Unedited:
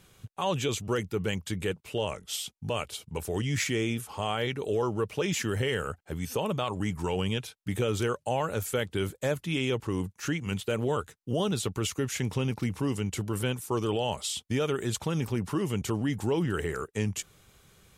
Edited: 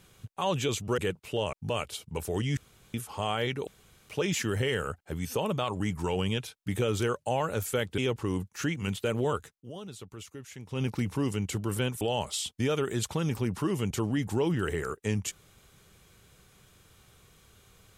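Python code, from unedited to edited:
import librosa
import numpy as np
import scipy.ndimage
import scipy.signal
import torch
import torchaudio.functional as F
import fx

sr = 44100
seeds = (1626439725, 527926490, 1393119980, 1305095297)

y = fx.edit(x, sr, fx.cut(start_s=0.98, length_s=0.61),
    fx.cut(start_s=2.14, length_s=0.39),
    fx.room_tone_fill(start_s=3.57, length_s=0.37),
    fx.room_tone_fill(start_s=4.67, length_s=0.42),
    fx.cut(start_s=8.98, length_s=0.64),
    fx.fade_down_up(start_s=11.15, length_s=1.31, db=-14.0, fade_s=0.12),
    fx.cut(start_s=13.65, length_s=0.27), tone=tone)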